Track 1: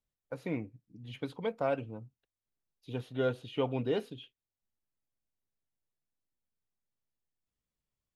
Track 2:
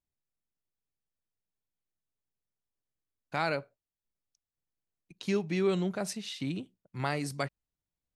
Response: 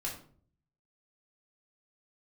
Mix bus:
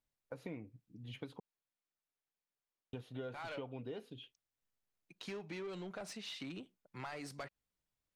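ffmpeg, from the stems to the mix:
-filter_complex "[0:a]volume=0.75,asplit=3[s0][s1][s2];[s0]atrim=end=1.4,asetpts=PTS-STARTPTS,afade=t=out:st=1.396:d=0.004:c=hsin[s3];[s1]atrim=start=1.4:end=2.93,asetpts=PTS-STARTPTS,volume=0[s4];[s2]atrim=start=2.93,asetpts=PTS-STARTPTS,afade=t=in:d=0.004:c=hsin[s5];[s3][s4][s5]concat=n=3:v=0:a=1[s6];[1:a]asplit=2[s7][s8];[s8]highpass=f=720:p=1,volume=11.2,asoftclip=type=tanh:threshold=0.15[s9];[s7][s9]amix=inputs=2:normalize=0,lowpass=f=2700:p=1,volume=0.501,volume=0.224[s10];[s6][s10]amix=inputs=2:normalize=0,acompressor=threshold=0.00794:ratio=6"

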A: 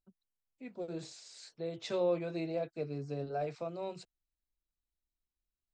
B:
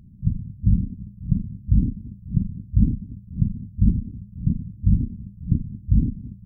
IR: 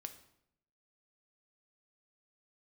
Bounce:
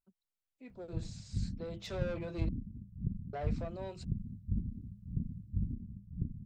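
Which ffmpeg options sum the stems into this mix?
-filter_complex "[0:a]asoftclip=type=tanh:threshold=0.0188,volume=0.596,asplit=3[s0][s1][s2];[s0]atrim=end=2.49,asetpts=PTS-STARTPTS,afade=t=out:st=2.486:d=0.004:c=hsin[s3];[s1]atrim=start=2.49:end=3.33,asetpts=PTS-STARTPTS,volume=0[s4];[s2]atrim=start=3.33,asetpts=PTS-STARTPTS,afade=t=in:d=0.004:c=hsin[s5];[s3][s4][s5]concat=n=3:v=0:a=1[s6];[1:a]acompressor=threshold=0.112:ratio=6,adelay=700,volume=0.2[s7];[s6][s7]amix=inputs=2:normalize=0,dynaudnorm=f=530:g=5:m=1.5"

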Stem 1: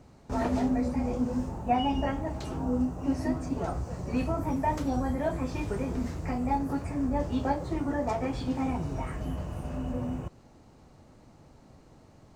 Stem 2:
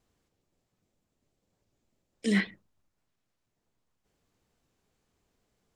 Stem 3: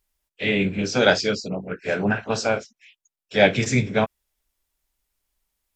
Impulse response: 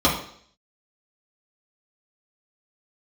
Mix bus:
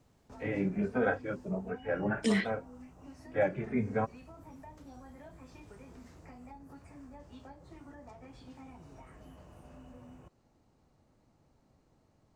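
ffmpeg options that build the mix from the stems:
-filter_complex "[0:a]acrossover=split=230|960[s0][s1][s2];[s0]acompressor=threshold=0.00891:ratio=4[s3];[s1]acompressor=threshold=0.00891:ratio=4[s4];[s2]acompressor=threshold=0.00562:ratio=4[s5];[s3][s4][s5]amix=inputs=3:normalize=0,volume=0.211[s6];[1:a]volume=1.26[s7];[2:a]lowpass=f=1700:w=0.5412,lowpass=f=1700:w=1.3066,asplit=2[s8][s9];[s9]adelay=3,afreqshift=1.4[s10];[s8][s10]amix=inputs=2:normalize=1,volume=0.562[s11];[s6][s7][s11]amix=inputs=3:normalize=0,alimiter=limit=0.119:level=0:latency=1:release=405"

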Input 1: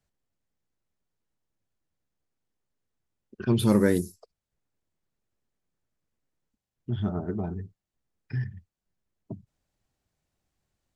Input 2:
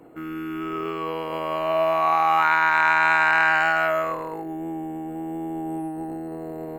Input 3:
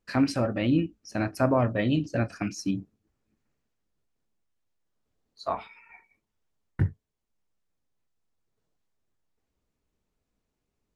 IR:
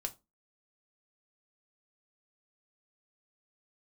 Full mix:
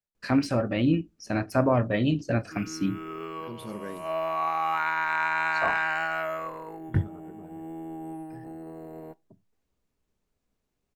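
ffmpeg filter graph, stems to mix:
-filter_complex "[0:a]lowshelf=f=190:g=-8.5,volume=0.141,asplit=3[s0][s1][s2];[s1]volume=0.473[s3];[1:a]adelay=2350,volume=0.316,asplit=2[s4][s5];[s5]volume=0.316[s6];[2:a]deesser=0.8,adelay=150,volume=0.944,asplit=2[s7][s8];[s8]volume=0.188[s9];[s2]apad=whole_len=402964[s10];[s4][s10]sidechaincompress=threshold=0.00178:ratio=8:attack=48:release=104[s11];[3:a]atrim=start_sample=2205[s12];[s3][s6][s9]amix=inputs=3:normalize=0[s13];[s13][s12]afir=irnorm=-1:irlink=0[s14];[s0][s11][s7][s14]amix=inputs=4:normalize=0"

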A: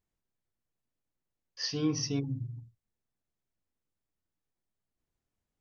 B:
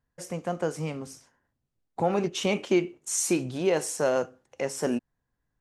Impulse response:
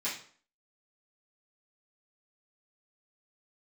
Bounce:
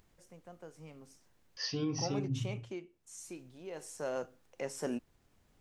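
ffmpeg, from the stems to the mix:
-filter_complex "[0:a]highshelf=f=5700:g=-6.5,alimiter=level_in=1.41:limit=0.0631:level=0:latency=1:release=149,volume=0.708,acompressor=mode=upward:threshold=0.00224:ratio=2.5,volume=1.06[s0];[1:a]volume=0.891,afade=t=in:st=0.72:d=0.65:silence=0.375837,afade=t=out:st=2.2:d=0.64:silence=0.398107,afade=t=in:st=3.67:d=0.72:silence=0.237137[s1];[s0][s1]amix=inputs=2:normalize=0"

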